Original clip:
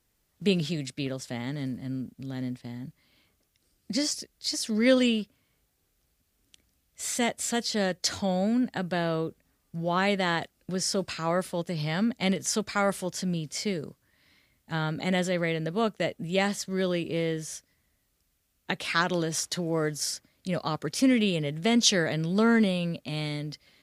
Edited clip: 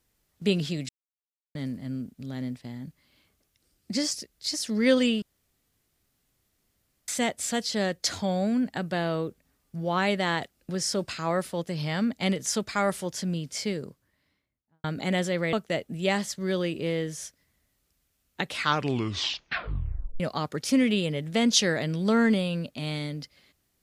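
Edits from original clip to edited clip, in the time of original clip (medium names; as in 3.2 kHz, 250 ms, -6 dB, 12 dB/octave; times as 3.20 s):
0.89–1.55 s: mute
5.22–7.08 s: room tone
13.67–14.84 s: studio fade out
15.53–15.83 s: delete
18.81 s: tape stop 1.69 s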